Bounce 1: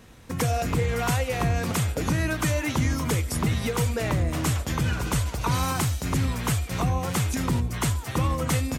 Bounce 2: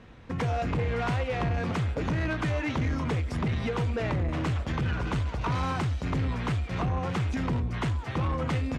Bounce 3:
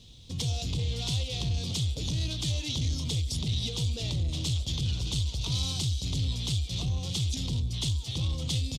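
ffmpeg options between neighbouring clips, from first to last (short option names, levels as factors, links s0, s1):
-af "lowpass=3000,asoftclip=type=tanh:threshold=0.0708"
-af "firequalizer=gain_entry='entry(120,0);entry(200,-8);entry(1600,-26);entry(3400,14)':delay=0.05:min_phase=1"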